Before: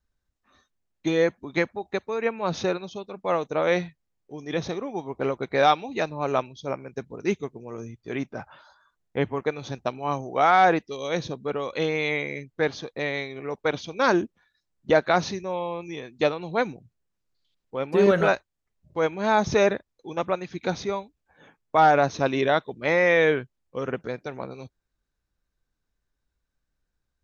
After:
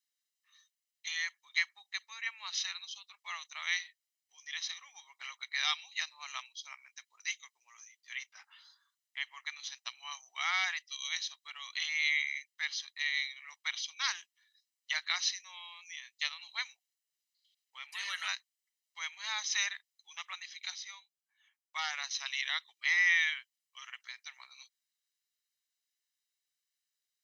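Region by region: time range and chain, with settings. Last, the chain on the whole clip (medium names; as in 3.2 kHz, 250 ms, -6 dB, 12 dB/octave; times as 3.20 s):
20.70–22.11 s: tone controls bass +14 dB, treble +2 dB + upward expansion, over -32 dBFS
whole clip: Bessel high-pass 3 kHz, order 4; comb 1 ms, depth 58%; trim +3 dB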